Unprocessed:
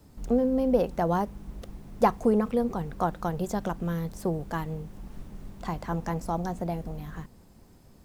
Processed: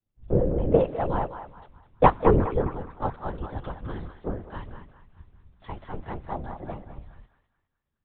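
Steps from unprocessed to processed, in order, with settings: LPC vocoder at 8 kHz whisper; band-passed feedback delay 207 ms, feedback 66%, band-pass 1.4 kHz, level -3.5 dB; three bands expanded up and down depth 100%; trim -2 dB

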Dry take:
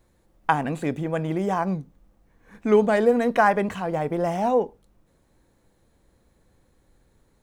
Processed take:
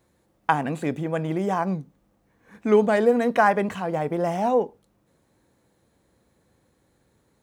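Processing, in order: high-pass 91 Hz 12 dB/octave

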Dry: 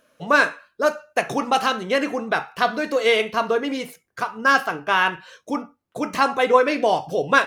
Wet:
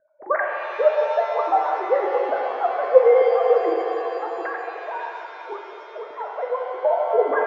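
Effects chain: formants replaced by sine waves; steep low-pass 1.9 kHz 72 dB/octave; peaking EQ 1.5 kHz -12 dB 0.77 oct; 4.26–6.85 s: compression 3:1, threshold -33 dBFS, peak gain reduction 19.5 dB; pitch-shifted reverb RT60 3.3 s, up +7 st, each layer -8 dB, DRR 0.5 dB; trim +1.5 dB

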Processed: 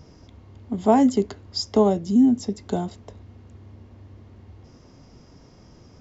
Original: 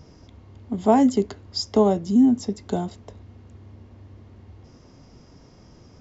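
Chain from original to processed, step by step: 1.89–2.63 s: dynamic bell 1.1 kHz, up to -4 dB, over -37 dBFS, Q 1.1

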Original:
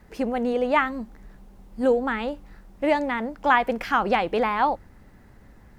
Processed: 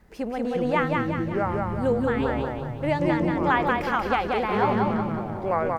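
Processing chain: ever faster or slower copies 265 ms, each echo -7 st, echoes 3; on a send: feedback delay 183 ms, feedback 48%, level -3 dB; on the sum: trim -4 dB

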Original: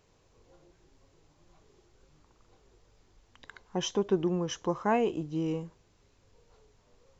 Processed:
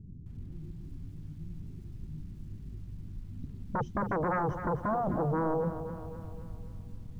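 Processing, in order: bass shelf 100 Hz -8 dB; in parallel at 0 dB: compression 16:1, threshold -42 dBFS, peak gain reduction 21 dB; on the sum: saturation -20 dBFS, distortion -17 dB; inverse Chebyshev low-pass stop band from 550 Hz, stop band 50 dB; sine folder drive 18 dB, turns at -26.5 dBFS; bit-crushed delay 260 ms, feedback 55%, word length 10-bit, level -10 dB

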